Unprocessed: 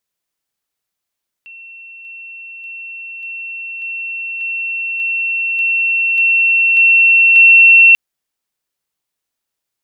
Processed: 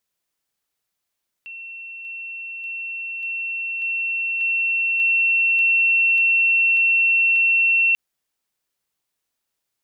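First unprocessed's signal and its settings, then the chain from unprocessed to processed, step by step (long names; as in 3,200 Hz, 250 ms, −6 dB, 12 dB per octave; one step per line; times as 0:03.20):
level staircase 2,710 Hz −33 dBFS, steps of 3 dB, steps 11, 0.59 s 0.00 s
brickwall limiter −14 dBFS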